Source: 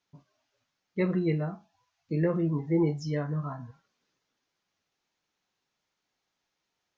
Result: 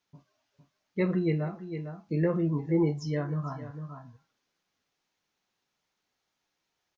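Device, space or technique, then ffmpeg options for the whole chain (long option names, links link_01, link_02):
ducked delay: -filter_complex "[0:a]asplit=3[link_01][link_02][link_03];[link_02]adelay=455,volume=-8dB[link_04];[link_03]apad=whole_len=327504[link_05];[link_04][link_05]sidechaincompress=threshold=-41dB:ratio=8:attack=16:release=291[link_06];[link_01][link_06]amix=inputs=2:normalize=0"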